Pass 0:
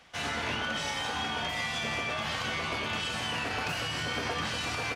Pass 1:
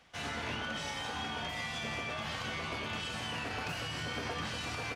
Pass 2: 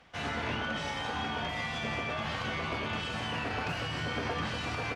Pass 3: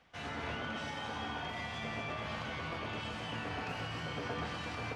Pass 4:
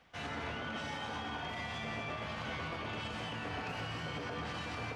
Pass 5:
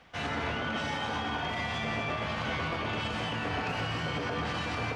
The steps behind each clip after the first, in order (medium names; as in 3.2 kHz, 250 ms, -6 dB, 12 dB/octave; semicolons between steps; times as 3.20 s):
bass shelf 370 Hz +3.5 dB; trim -6 dB
low-pass 2.7 kHz 6 dB/octave; trim +5 dB
echo whose repeats swap between lows and highs 126 ms, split 1.4 kHz, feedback 53%, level -2.5 dB; trim -7 dB
peak limiter -32.5 dBFS, peak gain reduction 7.5 dB; trim +1.5 dB
treble shelf 9.4 kHz -6 dB; trim +7.5 dB